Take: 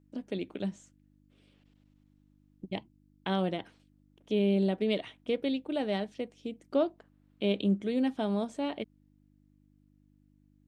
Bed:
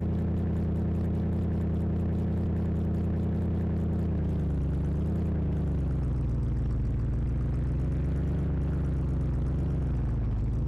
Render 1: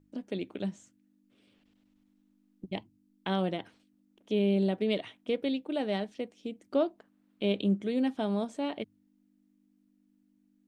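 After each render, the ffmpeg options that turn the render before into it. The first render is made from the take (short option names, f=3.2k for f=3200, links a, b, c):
-af "bandreject=f=50:t=h:w=4,bandreject=f=100:t=h:w=4,bandreject=f=150:t=h:w=4"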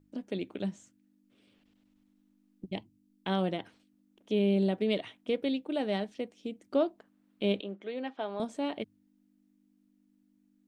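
-filter_complex "[0:a]asettb=1/sr,asplit=3[a][b][c];[a]atrim=end=2.674[d];[b]atrim=start=2.67:end=3.28,asetpts=PTS-STARTPTS,afade=t=in:d=0.004:c=qsin,afade=t=out:st=0.606:d=0.004:c=qsin,equalizer=f=1.2k:w=0.79:g=-4[e];[c]atrim=start=3.276[f];[d][e]acrossfade=d=0.004:c1=hsin:c2=qsin[g];[g][f]acrossfade=d=0.004:c1=qsin:c2=hsin,asettb=1/sr,asplit=3[h][i][j];[h]atrim=end=7.604[k];[i]atrim=start=7.6:end=8.4,asetpts=PTS-STARTPTS,afade=t=in:d=0.004:c=qsin,afade=t=out:st=0.796:d=0.004:c=qsin,highpass=500,lowpass=3.1k[l];[j]atrim=start=8.396[m];[k][l]acrossfade=d=0.004:c1=hsin:c2=qsin[n];[n][m]acrossfade=d=0.004:c1=qsin:c2=hsin"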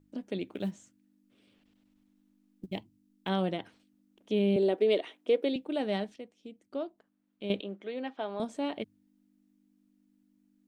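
-filter_complex "[0:a]asettb=1/sr,asplit=3[a][b][c];[a]atrim=end=0.494[d];[b]atrim=start=0.49:end=3.29,asetpts=PTS-STARTPTS,afade=t=in:d=0.004:c=qsin,afade=t=out:st=2.796:d=0.004:c=qsin,acrusher=bits=9:mode=log:mix=0:aa=0.000001[e];[c]atrim=start=3.286[f];[d][e]acrossfade=d=0.004:c1=hsin:c2=qsin[g];[g][f]acrossfade=d=0.004:c1=qsin:c2=hsin,asettb=1/sr,asplit=3[h][i][j];[h]atrim=end=4.564[k];[i]atrim=start=4.56:end=5.56,asetpts=PTS-STARTPTS,afade=t=in:d=0.004:c=qsin,afade=t=out:st=0.996:d=0.004:c=qsin,highpass=f=380:t=q:w=2.1[l];[j]atrim=start=5.556[m];[k][l]acrossfade=d=0.004:c1=hsin:c2=qsin[n];[n][m]acrossfade=d=0.004:c1=qsin:c2=hsin,asplit=3[o][p][q];[o]atrim=end=6.162[r];[p]atrim=start=6.158:end=7.502,asetpts=PTS-STARTPTS,volume=-8.5dB[s];[q]atrim=start=7.498[t];[r][s]acrossfade=d=0.004:c1=hsin:c2=hsin[u];[u][t]acrossfade=d=0.004:c1=hsin:c2=hsin"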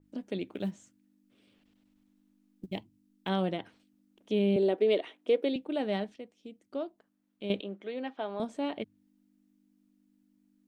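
-af "adynamicequalizer=threshold=0.002:dfrequency=4100:dqfactor=0.7:tfrequency=4100:tqfactor=0.7:attack=5:release=100:ratio=0.375:range=3:mode=cutabove:tftype=highshelf"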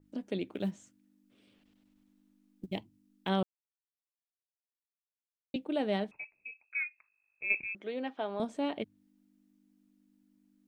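-filter_complex "[0:a]asettb=1/sr,asplit=3[a][b][c];[a]atrim=end=6.114[d];[b]atrim=start=6.11:end=7.75,asetpts=PTS-STARTPTS,afade=t=in:d=0.004:c=qsin,afade=t=out:st=1.636:d=0.004:c=qsin,lowpass=f=2.4k:t=q:w=0.5098,lowpass=f=2.4k:t=q:w=0.6013,lowpass=f=2.4k:t=q:w=0.9,lowpass=f=2.4k:t=q:w=2.563,afreqshift=-2800[e];[c]atrim=start=7.746[f];[d][e]acrossfade=d=0.004:c1=hsin:c2=qsin[g];[g][f]acrossfade=d=0.004:c1=qsin:c2=hsin,asplit=3[h][i][j];[h]atrim=end=3.43,asetpts=PTS-STARTPTS,afade=t=out:st=3.426:d=0.004:c=hsin[k];[i]atrim=start=3.43:end=5.54,asetpts=PTS-STARTPTS,volume=0[l];[j]atrim=start=5.54,asetpts=PTS-STARTPTS,afade=t=in:d=0.004:c=hsin[m];[k][l][m]concat=n=3:v=0:a=1"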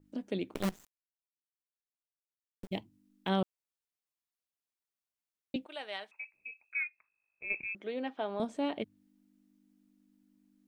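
-filter_complex "[0:a]asettb=1/sr,asplit=3[a][b][c];[a]atrim=end=0.544[d];[b]atrim=start=0.54:end=2.71,asetpts=PTS-STARTPTS,afade=t=in:d=0.004:c=qsin,afade=t=out:st=2.166:d=0.004:c=qsin,acrusher=bits=6:dc=4:mix=0:aa=0.000001[e];[c]atrim=start=2.706[f];[d][e]acrossfade=d=0.004:c1=hsin:c2=qsin[g];[g][f]acrossfade=d=0.004:c1=qsin:c2=hsin,asettb=1/sr,asplit=3[h][i][j];[h]atrim=end=5.664[k];[i]atrim=start=5.66:end=6.34,asetpts=PTS-STARTPTS,afade=t=in:d=0.004:c=qsin,afade=t=out:st=0.676:d=0.004:c=qsin,highpass=1.1k[l];[j]atrim=start=6.336[m];[k][l]acrossfade=d=0.004:c1=hsin:c2=qsin[n];[n][m]acrossfade=d=0.004:c1=qsin:c2=hsin,asettb=1/sr,asplit=3[o][p][q];[o]atrim=end=6.874[r];[p]atrim=start=6.87:end=7.6,asetpts=PTS-STARTPTS,afade=t=in:d=0.004:c=qsin,afade=t=out:st=0.726:d=0.004:c=qsin,lowpass=f=1.6k:p=1[s];[q]atrim=start=7.596[t];[r][s]acrossfade=d=0.004:c1=hsin:c2=qsin[u];[u][t]acrossfade=d=0.004:c1=qsin:c2=hsin"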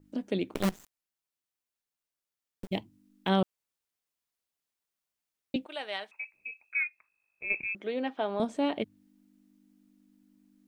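-af "volume=4.5dB"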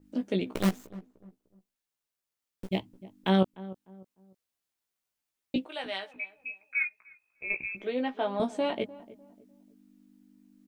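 -filter_complex "[0:a]asplit=2[a][b];[b]adelay=16,volume=-5dB[c];[a][c]amix=inputs=2:normalize=0,asplit=2[d][e];[e]adelay=300,lowpass=f=870:p=1,volume=-17dB,asplit=2[f][g];[g]adelay=300,lowpass=f=870:p=1,volume=0.35,asplit=2[h][i];[i]adelay=300,lowpass=f=870:p=1,volume=0.35[j];[d][f][h][j]amix=inputs=4:normalize=0"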